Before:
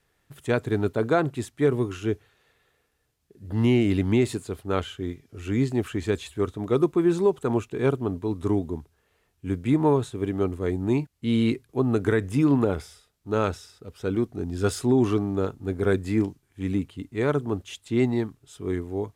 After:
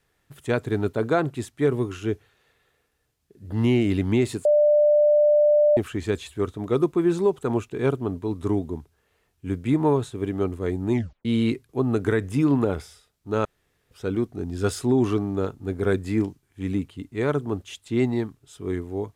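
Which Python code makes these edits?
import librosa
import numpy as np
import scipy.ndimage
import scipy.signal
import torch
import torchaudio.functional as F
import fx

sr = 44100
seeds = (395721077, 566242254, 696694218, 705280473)

y = fx.edit(x, sr, fx.bleep(start_s=4.45, length_s=1.32, hz=594.0, db=-14.0),
    fx.tape_stop(start_s=10.93, length_s=0.32),
    fx.room_tone_fill(start_s=13.45, length_s=0.46), tone=tone)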